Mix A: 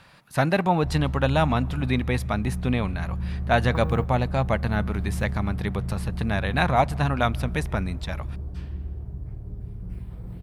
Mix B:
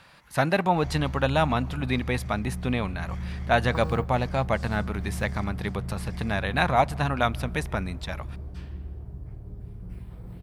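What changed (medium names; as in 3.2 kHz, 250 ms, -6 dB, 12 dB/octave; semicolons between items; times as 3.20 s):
first sound: unmuted; master: add bass shelf 280 Hz -4.5 dB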